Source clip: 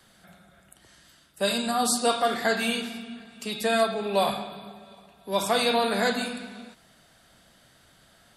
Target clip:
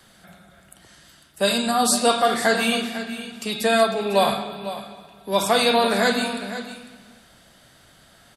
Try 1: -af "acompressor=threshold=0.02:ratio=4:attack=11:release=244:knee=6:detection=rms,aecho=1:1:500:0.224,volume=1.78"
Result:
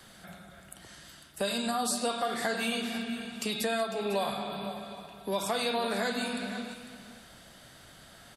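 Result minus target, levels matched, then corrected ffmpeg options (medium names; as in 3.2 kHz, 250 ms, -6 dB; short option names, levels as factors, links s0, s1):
compression: peak gain reduction +14.5 dB
-af "aecho=1:1:500:0.224,volume=1.78"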